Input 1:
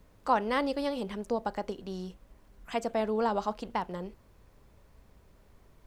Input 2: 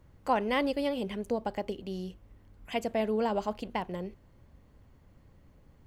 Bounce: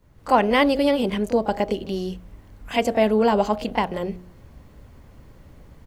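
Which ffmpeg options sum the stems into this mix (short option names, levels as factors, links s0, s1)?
-filter_complex "[0:a]acompressor=threshold=0.0141:ratio=6,volume=0.562[s0];[1:a]bandreject=f=89.74:t=h:w=4,bandreject=f=179.48:t=h:w=4,bandreject=f=269.22:t=h:w=4,bandreject=f=358.96:t=h:w=4,bandreject=f=448.7:t=h:w=4,bandreject=f=538.44:t=h:w=4,bandreject=f=628.18:t=h:w=4,bandreject=f=717.92:t=h:w=4,bandreject=f=807.66:t=h:w=4,adelay=24,volume=1.26[s1];[s0][s1]amix=inputs=2:normalize=0,dynaudnorm=f=140:g=3:m=2.82"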